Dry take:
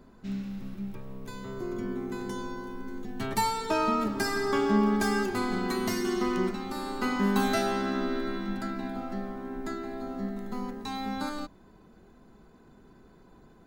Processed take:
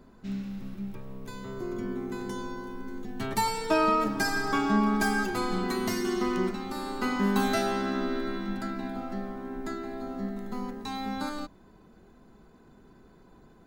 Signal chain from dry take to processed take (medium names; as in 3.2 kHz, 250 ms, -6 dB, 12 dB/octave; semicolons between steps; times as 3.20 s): 3.47–5.64 s: comb 6.3 ms, depth 63%